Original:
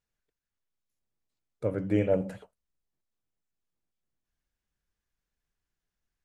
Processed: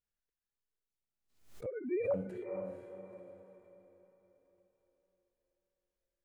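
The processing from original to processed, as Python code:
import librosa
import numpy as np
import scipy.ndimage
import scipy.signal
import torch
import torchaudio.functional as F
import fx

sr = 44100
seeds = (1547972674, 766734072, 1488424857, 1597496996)

y = fx.sine_speech(x, sr, at=(1.66, 2.14))
y = fx.echo_diffused(y, sr, ms=478, feedback_pct=40, wet_db=-8)
y = fx.hpss(y, sr, part='percussive', gain_db=-9)
y = fx.pre_swell(y, sr, db_per_s=110.0)
y = y * 10.0 ** (-6.5 / 20.0)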